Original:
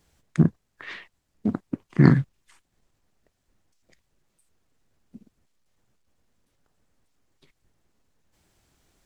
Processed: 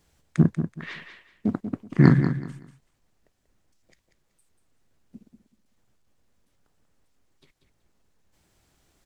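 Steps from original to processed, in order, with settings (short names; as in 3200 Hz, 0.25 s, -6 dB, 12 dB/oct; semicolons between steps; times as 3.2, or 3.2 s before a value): feedback echo 0.189 s, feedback 24%, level -9 dB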